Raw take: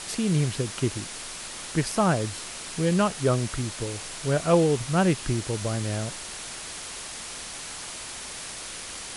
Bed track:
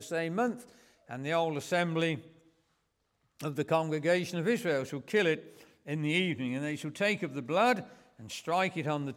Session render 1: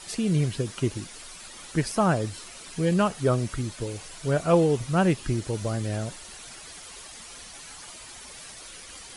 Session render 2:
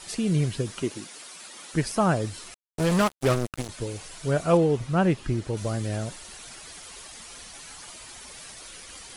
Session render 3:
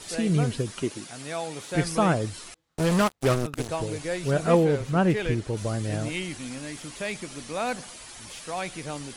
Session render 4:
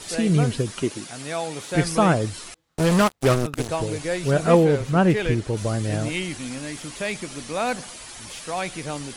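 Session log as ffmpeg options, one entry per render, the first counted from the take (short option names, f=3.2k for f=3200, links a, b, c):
-af "afftdn=nr=10:nf=-38"
-filter_complex "[0:a]asettb=1/sr,asplit=3[a][b][c];[a]atrim=end=0.824[d];[b]atrim=start=0.82:end=1.73,asetpts=PTS-STARTPTS,afade=t=in:d=0.004:c=qsin,afade=t=out:st=0.906:d=0.004:c=qsin,highpass=210[e];[c]atrim=start=1.726[f];[d][e]acrossfade=d=0.004:c1=hsin:c2=qsin[g];[g][f]acrossfade=d=0.004:c1=qsin:c2=hsin,asettb=1/sr,asplit=3[h][i][j];[h]atrim=end=2.544[k];[i]atrim=start=2.54:end=3.69,asetpts=PTS-STARTPTS,afade=t=in:d=0.004:c=qsin,afade=t=out:st=1.146:d=0.004:c=qsin,acrusher=bits=3:mix=0:aa=0.5[l];[j]atrim=start=3.686[m];[k][l]acrossfade=d=0.004:c1=hsin:c2=qsin[n];[n][m]acrossfade=d=0.004:c1=qsin:c2=hsin,asettb=1/sr,asplit=3[o][p][q];[o]atrim=end=4.574[r];[p]atrim=start=4.57:end=5.57,asetpts=PTS-STARTPTS,afade=t=in:d=0.004:c=qsin,afade=t=out:st=0.996:d=0.004:c=qsin,highshelf=f=4.8k:g=-10[s];[q]atrim=start=5.566[t];[r][s]acrossfade=d=0.004:c1=hsin:c2=qsin[u];[u][t]acrossfade=d=0.004:c1=qsin:c2=hsin"
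-filter_complex "[1:a]volume=-3dB[a];[0:a][a]amix=inputs=2:normalize=0"
-af "volume=4dB"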